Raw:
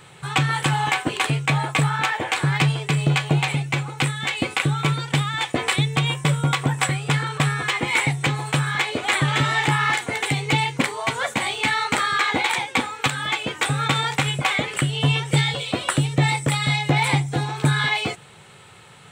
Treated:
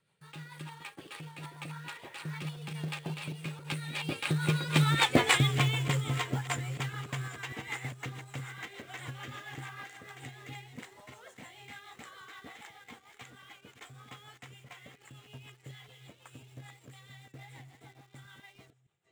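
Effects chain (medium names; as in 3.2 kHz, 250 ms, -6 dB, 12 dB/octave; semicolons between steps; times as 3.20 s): chunks repeated in reverse 555 ms, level -7 dB; Doppler pass-by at 5.12 s, 26 m/s, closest 9.3 m; rotary cabinet horn 6.7 Hz; in parallel at -6.5 dB: companded quantiser 4-bit; on the sum: trim -3.5 dB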